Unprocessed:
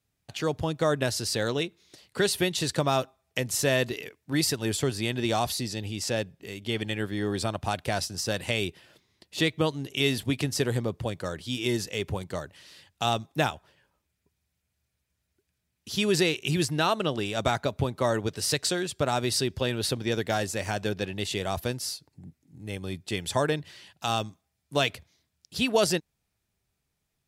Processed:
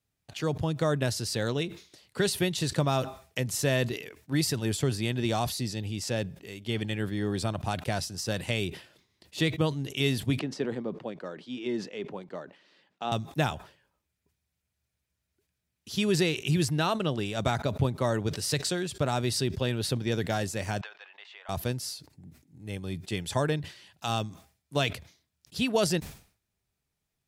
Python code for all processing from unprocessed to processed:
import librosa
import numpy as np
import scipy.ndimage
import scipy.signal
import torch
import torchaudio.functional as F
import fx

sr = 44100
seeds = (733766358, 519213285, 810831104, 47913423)

y = fx.chain(x, sr, fx.highpass(hz=200.0, slope=24),
    fx.spacing_loss(db_at_10k=26), at=(10.39, 13.12))
y = fx.chain(y, sr, fx.highpass(hz=940.0, slope=24),
    fx.spacing_loss(db_at_10k=43),
    fx.band_squash(depth_pct=100), at=(20.81, 21.49))
y = fx.dynamic_eq(y, sr, hz=140.0, q=0.85, threshold_db=-40.0, ratio=4.0, max_db=6)
y = fx.sustainer(y, sr, db_per_s=130.0)
y = F.gain(torch.from_numpy(y), -3.5).numpy()